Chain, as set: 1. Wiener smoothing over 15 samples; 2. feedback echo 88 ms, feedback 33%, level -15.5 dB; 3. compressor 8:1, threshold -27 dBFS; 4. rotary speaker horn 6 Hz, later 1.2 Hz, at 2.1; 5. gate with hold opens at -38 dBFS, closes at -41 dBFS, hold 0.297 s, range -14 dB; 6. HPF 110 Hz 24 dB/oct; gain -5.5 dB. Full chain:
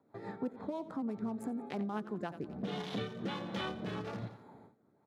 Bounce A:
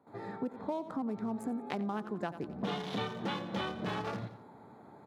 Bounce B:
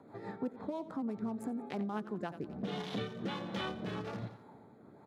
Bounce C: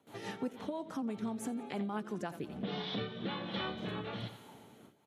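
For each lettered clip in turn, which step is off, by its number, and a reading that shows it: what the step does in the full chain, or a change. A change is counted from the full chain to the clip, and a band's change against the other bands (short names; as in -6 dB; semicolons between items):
4, crest factor change +4.5 dB; 5, momentary loudness spread change +3 LU; 1, 4 kHz band +4.5 dB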